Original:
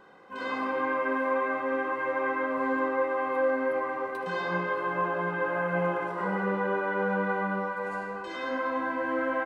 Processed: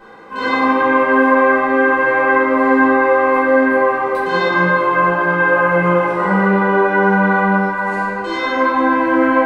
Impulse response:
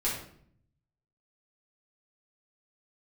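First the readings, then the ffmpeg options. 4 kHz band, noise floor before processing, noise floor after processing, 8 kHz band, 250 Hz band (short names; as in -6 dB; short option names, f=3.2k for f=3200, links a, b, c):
+15.5 dB, -37 dBFS, -22 dBFS, n/a, +17.0 dB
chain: -filter_complex "[1:a]atrim=start_sample=2205,atrim=end_sample=6174[a];[0:a][a]afir=irnorm=-1:irlink=0,volume=8dB"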